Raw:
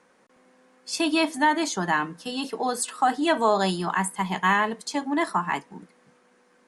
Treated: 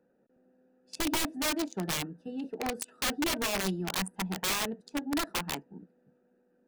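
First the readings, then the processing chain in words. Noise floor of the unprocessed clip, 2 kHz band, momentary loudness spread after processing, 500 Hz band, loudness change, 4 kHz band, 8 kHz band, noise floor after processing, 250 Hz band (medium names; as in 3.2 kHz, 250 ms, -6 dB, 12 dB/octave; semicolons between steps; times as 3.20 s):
-61 dBFS, -9.0 dB, 9 LU, -10.0 dB, -7.5 dB, -2.0 dB, -2.0 dB, -71 dBFS, -7.0 dB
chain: local Wiener filter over 41 samples; integer overflow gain 20 dB; trim -4 dB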